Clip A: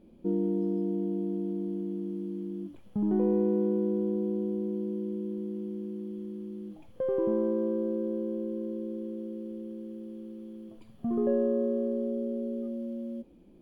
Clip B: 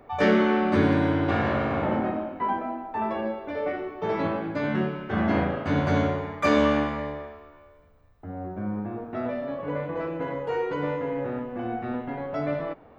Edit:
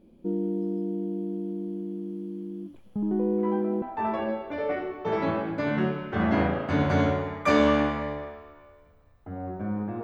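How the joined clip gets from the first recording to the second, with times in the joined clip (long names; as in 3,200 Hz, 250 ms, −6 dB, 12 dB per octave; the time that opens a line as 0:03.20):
clip A
0:03.38: mix in clip B from 0:02.35 0.44 s −10 dB
0:03.82: continue with clip B from 0:02.79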